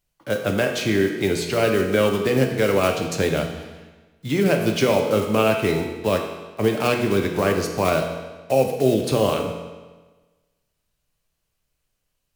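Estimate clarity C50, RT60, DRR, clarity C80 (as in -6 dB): 5.5 dB, 1.3 s, 2.5 dB, 7.0 dB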